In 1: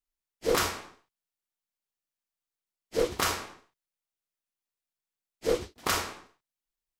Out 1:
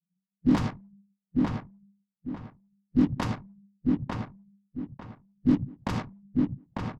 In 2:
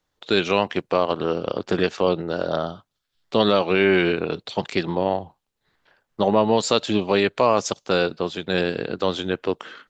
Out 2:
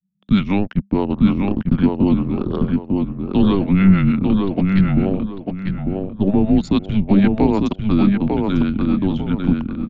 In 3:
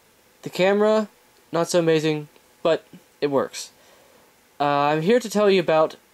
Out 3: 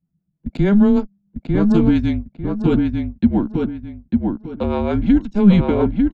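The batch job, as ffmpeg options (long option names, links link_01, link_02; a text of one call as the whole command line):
ffmpeg -i in.wav -filter_complex "[0:a]aemphasis=mode=reproduction:type=bsi,anlmdn=15.8,equalizer=frequency=420:width=2.8:gain=12,acrossover=split=520[link_01][link_02];[link_01]aeval=exprs='val(0)*(1-0.7/2+0.7/2*cos(2*PI*6.4*n/s))':channel_layout=same[link_03];[link_02]aeval=exprs='val(0)*(1-0.7/2-0.7/2*cos(2*PI*6.4*n/s))':channel_layout=same[link_04];[link_03][link_04]amix=inputs=2:normalize=0,afreqshift=-200,asplit=2[link_05][link_06];[link_06]adelay=898,lowpass=frequency=2800:poles=1,volume=-3dB,asplit=2[link_07][link_08];[link_08]adelay=898,lowpass=frequency=2800:poles=1,volume=0.3,asplit=2[link_09][link_10];[link_10]adelay=898,lowpass=frequency=2800:poles=1,volume=0.3,asplit=2[link_11][link_12];[link_12]adelay=898,lowpass=frequency=2800:poles=1,volume=0.3[link_13];[link_07][link_09][link_11][link_13]amix=inputs=4:normalize=0[link_14];[link_05][link_14]amix=inputs=2:normalize=0,volume=-1dB" out.wav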